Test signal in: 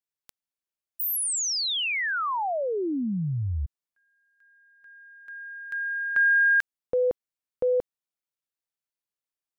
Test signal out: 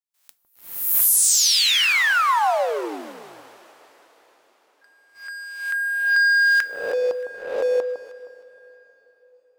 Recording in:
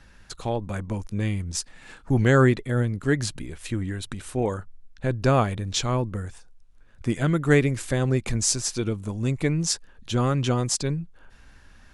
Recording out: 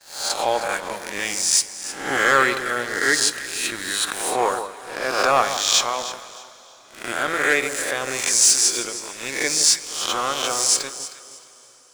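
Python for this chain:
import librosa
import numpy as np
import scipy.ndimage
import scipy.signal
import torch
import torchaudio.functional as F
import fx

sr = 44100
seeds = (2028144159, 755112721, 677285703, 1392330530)

p1 = fx.spec_swells(x, sr, rise_s=0.91)
p2 = scipy.signal.sosfilt(scipy.signal.butter(2, 720.0, 'highpass', fs=sr, output='sos'), p1)
p3 = fx.gate_hold(p2, sr, open_db=-49.0, close_db=-55.0, hold_ms=79.0, range_db=-21, attack_ms=8.2, release_ms=100.0)
p4 = fx.high_shelf(p3, sr, hz=5700.0, db=3.0)
p5 = fx.rider(p4, sr, range_db=5, speed_s=2.0)
p6 = fx.leveller(p5, sr, passes=3)
p7 = p6 + fx.echo_alternate(p6, sr, ms=156, hz=1200.0, feedback_pct=51, wet_db=-8.5, dry=0)
p8 = fx.rev_double_slope(p7, sr, seeds[0], early_s=0.22, late_s=4.8, knee_db=-20, drr_db=12.0)
y = p8 * 10.0 ** (-5.5 / 20.0)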